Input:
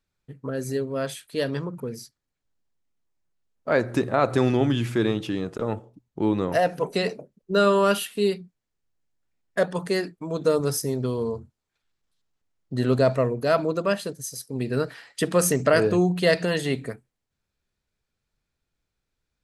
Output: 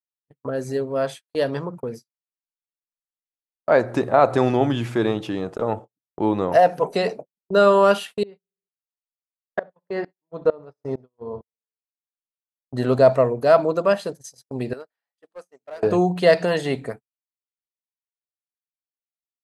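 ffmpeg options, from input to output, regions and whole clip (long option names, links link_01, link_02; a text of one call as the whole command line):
ffmpeg -i in.wav -filter_complex "[0:a]asettb=1/sr,asplit=3[link_01][link_02][link_03];[link_01]atrim=end=8.234[link_04];[link_02]atrim=start=8.23:end=12.74,asetpts=PTS-STARTPTS,afade=type=in:duration=0.004:curve=qsin,afade=type=out:start_time=4.506:duration=0.004:curve=qsin,lowpass=2500,aecho=1:1:67|134|201|268|335|402:0.168|0.0974|0.0565|0.0328|0.019|0.011,atrim=end_sample=198891,aeval=exprs='val(0)*pow(10,-25*if(lt(mod(-2.2*n/s,1),2*abs(-2.2)/1000),1-mod(-2.2*n/s,1)/(2*abs(-2.2)/1000),(mod(-2.2*n/s,1)-2*abs(-2.2)/1000)/(1-2*abs(-2.2)/1000))/20)':channel_layout=same[link_05];[link_03]atrim=start=12.736[link_06];[link_04][link_05]acrossfade=duration=0.004:curve1=hsin:curve2=qsin[link_07];[link_07][link_06]acrossfade=duration=0.004:curve1=qsin:curve2=hsin,asettb=1/sr,asplit=3[link_08][link_09][link_10];[link_08]atrim=end=14.734[link_11];[link_09]atrim=start=14.73:end=15.83,asetpts=PTS-STARTPTS,afade=type=in:duration=0.004:curve=qsin,afade=type=out:start_time=1.096:duration=0.004:curve=qsin,highpass=330,asoftclip=type=hard:threshold=-16.5dB,acompressor=threshold=-44dB:ratio=2.5:attack=3.2:release=140:knee=1:detection=peak[link_12];[link_10]atrim=start=15.826[link_13];[link_11][link_12]acrossfade=duration=0.004:curve1=hsin:curve2=qsin[link_14];[link_14][link_13]acrossfade=duration=0.004:curve1=qsin:curve2=hsin,acrossover=split=8200[link_15][link_16];[link_16]acompressor=threshold=-51dB:ratio=4:attack=1:release=60[link_17];[link_15][link_17]amix=inputs=2:normalize=0,agate=range=-42dB:threshold=-36dB:ratio=16:detection=peak,equalizer=frequency=750:width=1:gain=9.5,volume=-1dB" out.wav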